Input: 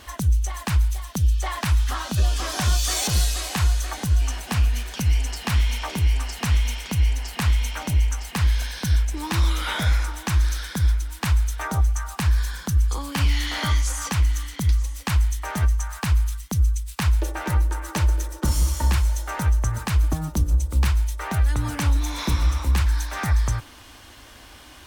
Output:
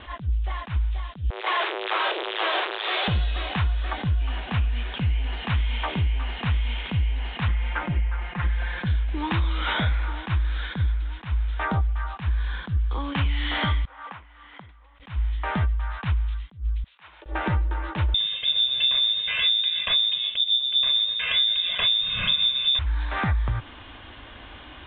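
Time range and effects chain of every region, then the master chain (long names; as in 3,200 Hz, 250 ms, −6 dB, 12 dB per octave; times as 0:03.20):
0:01.30–0:03.08: sign of each sample alone + Butterworth high-pass 340 Hz 96 dB per octave
0:07.48–0:08.86: high shelf with overshoot 2,500 Hz −7 dB, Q 1.5 + comb filter 5.7 ms, depth 80%
0:13.85–0:15.00: downward compressor 3 to 1, threshold −33 dBFS + resonant band-pass 970 Hz, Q 0.98 + one half of a high-frequency compander decoder only
0:16.84–0:17.26: high-pass filter 500 Hz + downward compressor 4 to 1, threshold −47 dBFS
0:18.14–0:22.79: comb filter 2 ms, depth 98% + voice inversion scrambler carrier 3,600 Hz + feedback echo at a low word length 122 ms, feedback 35%, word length 6 bits, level −11.5 dB
whole clip: Butterworth low-pass 3,700 Hz 96 dB per octave; downward compressor, threshold −24 dBFS; level that may rise only so fast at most 220 dB per second; level +3.5 dB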